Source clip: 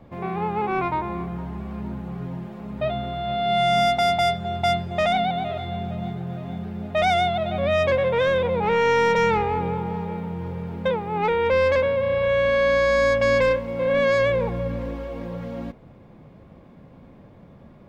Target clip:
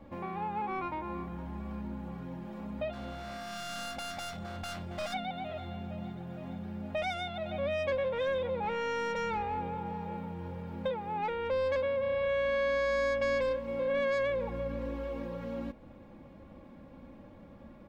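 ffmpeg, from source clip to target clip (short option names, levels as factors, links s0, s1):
-filter_complex "[0:a]asplit=3[s0][s1][s2];[s0]afade=t=out:st=2.92:d=0.02[s3];[s1]volume=21.1,asoftclip=hard,volume=0.0473,afade=t=in:st=2.92:d=0.02,afade=t=out:st=5.13:d=0.02[s4];[s2]afade=t=in:st=5.13:d=0.02[s5];[s3][s4][s5]amix=inputs=3:normalize=0,acompressor=threshold=0.02:ratio=2,aecho=1:1:3.6:0.56,volume=0.596"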